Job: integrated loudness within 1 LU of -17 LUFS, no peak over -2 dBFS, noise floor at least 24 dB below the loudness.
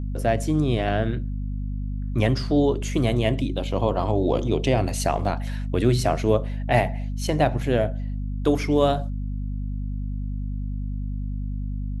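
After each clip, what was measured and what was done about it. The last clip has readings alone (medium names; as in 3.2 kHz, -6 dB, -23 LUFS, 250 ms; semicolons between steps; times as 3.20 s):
hum 50 Hz; highest harmonic 250 Hz; hum level -26 dBFS; loudness -24.5 LUFS; peak level -5.0 dBFS; loudness target -17.0 LUFS
-> de-hum 50 Hz, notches 5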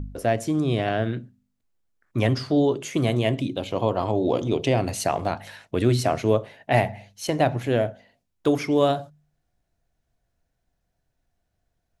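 hum not found; loudness -24.0 LUFS; peak level -5.5 dBFS; loudness target -17.0 LUFS
-> trim +7 dB; peak limiter -2 dBFS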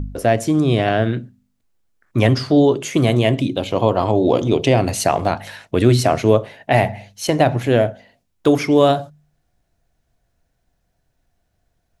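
loudness -17.5 LUFS; peak level -2.0 dBFS; noise floor -69 dBFS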